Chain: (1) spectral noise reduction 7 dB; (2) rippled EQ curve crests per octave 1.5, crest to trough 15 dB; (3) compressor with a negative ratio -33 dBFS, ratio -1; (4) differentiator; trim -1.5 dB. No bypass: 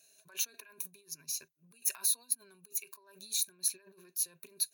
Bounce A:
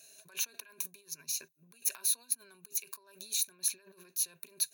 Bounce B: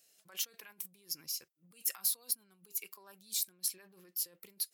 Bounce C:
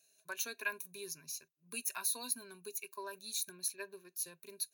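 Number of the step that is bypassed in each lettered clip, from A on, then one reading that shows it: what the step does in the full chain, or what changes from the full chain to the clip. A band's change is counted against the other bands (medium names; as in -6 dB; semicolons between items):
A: 1, 2 kHz band +1.5 dB; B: 2, 8 kHz band -3.0 dB; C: 3, momentary loudness spread change -4 LU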